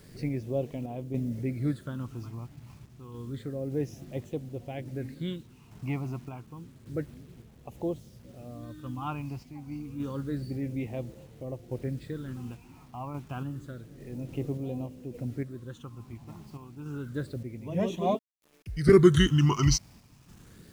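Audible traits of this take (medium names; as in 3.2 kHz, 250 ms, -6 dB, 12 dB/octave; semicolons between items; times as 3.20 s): phasing stages 8, 0.29 Hz, lowest notch 480–1500 Hz; a quantiser's noise floor 10-bit, dither none; random-step tremolo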